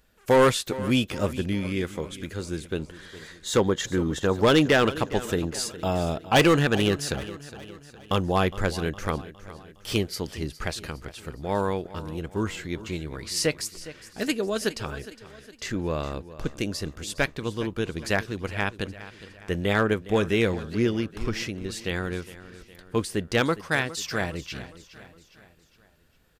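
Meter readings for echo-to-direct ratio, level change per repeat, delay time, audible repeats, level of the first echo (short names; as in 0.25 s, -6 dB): -15.0 dB, -6.0 dB, 0.411 s, 4, -16.0 dB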